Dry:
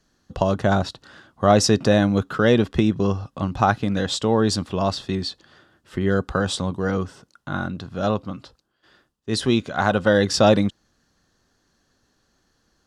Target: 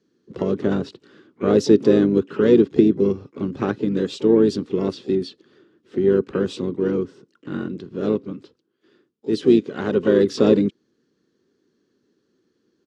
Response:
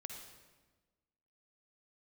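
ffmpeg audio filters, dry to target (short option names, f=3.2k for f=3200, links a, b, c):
-filter_complex "[0:a]asplit=4[a][b][c][d];[b]asetrate=33038,aresample=44100,atempo=1.33484,volume=-10dB[e];[c]asetrate=55563,aresample=44100,atempo=0.793701,volume=-15dB[f];[d]asetrate=88200,aresample=44100,atempo=0.5,volume=-16dB[g];[a][e][f][g]amix=inputs=4:normalize=0,highpass=210,lowpass=5.7k,lowshelf=f=530:t=q:w=3:g=9.5,volume=-8dB"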